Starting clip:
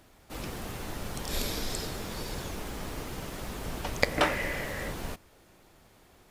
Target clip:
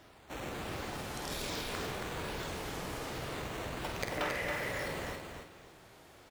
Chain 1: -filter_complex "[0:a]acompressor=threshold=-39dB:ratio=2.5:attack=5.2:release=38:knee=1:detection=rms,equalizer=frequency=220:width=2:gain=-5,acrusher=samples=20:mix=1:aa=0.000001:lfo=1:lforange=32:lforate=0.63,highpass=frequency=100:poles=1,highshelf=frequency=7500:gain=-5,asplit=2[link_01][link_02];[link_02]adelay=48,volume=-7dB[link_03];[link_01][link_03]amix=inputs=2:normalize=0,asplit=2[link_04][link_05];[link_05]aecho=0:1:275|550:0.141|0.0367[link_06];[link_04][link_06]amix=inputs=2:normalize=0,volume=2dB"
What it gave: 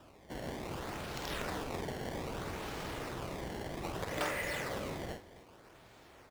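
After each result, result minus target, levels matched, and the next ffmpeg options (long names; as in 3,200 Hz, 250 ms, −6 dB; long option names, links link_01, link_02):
echo-to-direct −11.5 dB; sample-and-hold swept by an LFO: distortion +6 dB
-filter_complex "[0:a]acompressor=threshold=-39dB:ratio=2.5:attack=5.2:release=38:knee=1:detection=rms,equalizer=frequency=220:width=2:gain=-5,acrusher=samples=20:mix=1:aa=0.000001:lfo=1:lforange=32:lforate=0.63,highpass=frequency=100:poles=1,highshelf=frequency=7500:gain=-5,asplit=2[link_01][link_02];[link_02]adelay=48,volume=-7dB[link_03];[link_01][link_03]amix=inputs=2:normalize=0,asplit=2[link_04][link_05];[link_05]aecho=0:1:275|550|825:0.531|0.138|0.0359[link_06];[link_04][link_06]amix=inputs=2:normalize=0,volume=2dB"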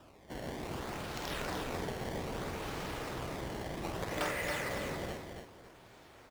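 sample-and-hold swept by an LFO: distortion +6 dB
-filter_complex "[0:a]acompressor=threshold=-39dB:ratio=2.5:attack=5.2:release=38:knee=1:detection=rms,equalizer=frequency=220:width=2:gain=-5,acrusher=samples=5:mix=1:aa=0.000001:lfo=1:lforange=8:lforate=0.63,highpass=frequency=100:poles=1,highshelf=frequency=7500:gain=-5,asplit=2[link_01][link_02];[link_02]adelay=48,volume=-7dB[link_03];[link_01][link_03]amix=inputs=2:normalize=0,asplit=2[link_04][link_05];[link_05]aecho=0:1:275|550|825:0.531|0.138|0.0359[link_06];[link_04][link_06]amix=inputs=2:normalize=0,volume=2dB"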